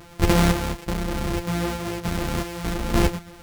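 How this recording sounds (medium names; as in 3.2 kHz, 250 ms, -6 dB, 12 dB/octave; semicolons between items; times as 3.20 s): a buzz of ramps at a fixed pitch in blocks of 256 samples; chopped level 0.68 Hz, depth 60%, duty 35%; a shimmering, thickened sound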